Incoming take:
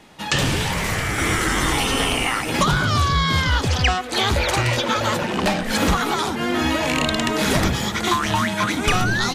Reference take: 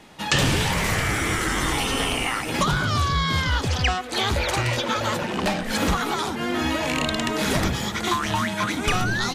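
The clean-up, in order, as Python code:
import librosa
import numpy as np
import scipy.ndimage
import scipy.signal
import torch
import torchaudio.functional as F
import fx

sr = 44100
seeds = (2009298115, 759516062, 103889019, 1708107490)

y = fx.fix_level(x, sr, at_s=1.18, step_db=-3.5)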